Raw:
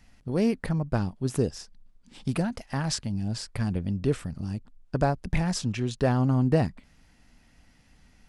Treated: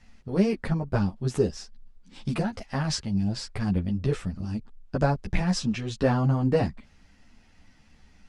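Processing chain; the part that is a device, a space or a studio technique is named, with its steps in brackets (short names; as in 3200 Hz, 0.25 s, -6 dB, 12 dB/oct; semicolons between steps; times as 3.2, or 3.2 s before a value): string-machine ensemble chorus (ensemble effect; LPF 7400 Hz 12 dB/oct); gain +4.5 dB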